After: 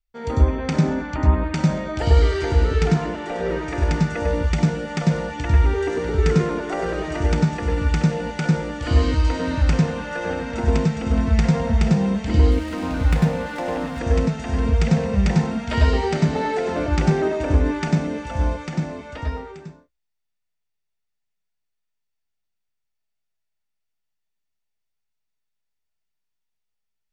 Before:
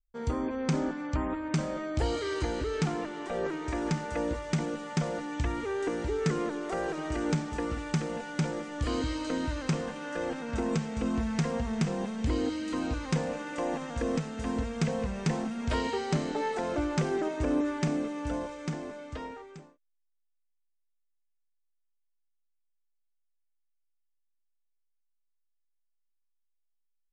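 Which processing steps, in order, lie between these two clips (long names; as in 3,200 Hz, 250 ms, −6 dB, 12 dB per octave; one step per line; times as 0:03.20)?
convolution reverb RT60 0.10 s, pre-delay 96 ms, DRR 3 dB
0:12.51–0:13.99: windowed peak hold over 5 samples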